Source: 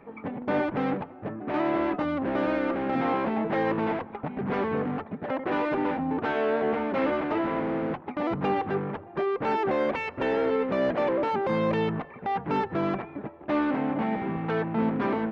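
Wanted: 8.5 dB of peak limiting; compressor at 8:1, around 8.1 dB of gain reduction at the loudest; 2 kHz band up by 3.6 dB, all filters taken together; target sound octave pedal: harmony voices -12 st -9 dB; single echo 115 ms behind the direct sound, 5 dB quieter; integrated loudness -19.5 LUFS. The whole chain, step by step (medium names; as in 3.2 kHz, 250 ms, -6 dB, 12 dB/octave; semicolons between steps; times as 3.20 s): peaking EQ 2 kHz +4.5 dB; compression 8:1, threshold -30 dBFS; peak limiter -28.5 dBFS; delay 115 ms -5 dB; harmony voices -12 st -9 dB; trim +15.5 dB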